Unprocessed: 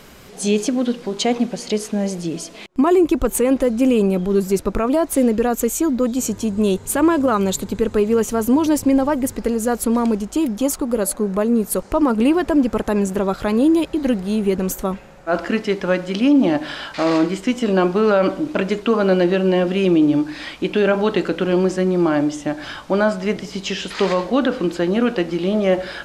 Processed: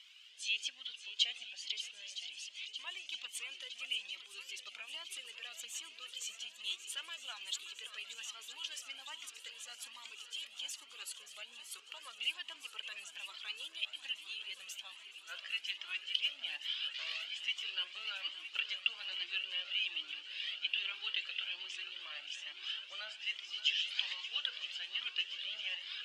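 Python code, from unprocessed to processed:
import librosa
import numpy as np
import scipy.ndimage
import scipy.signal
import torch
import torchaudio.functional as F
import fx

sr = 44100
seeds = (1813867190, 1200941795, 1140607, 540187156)

y = fx.ladder_bandpass(x, sr, hz=3200.0, resonance_pct=70)
y = fx.hpss(y, sr, part='percussive', gain_db=5)
y = fx.echo_swing(y, sr, ms=962, ratio=1.5, feedback_pct=71, wet_db=-12.5)
y = fx.comb_cascade(y, sr, direction='rising', hz=1.2)
y = y * librosa.db_to_amplitude(-1.0)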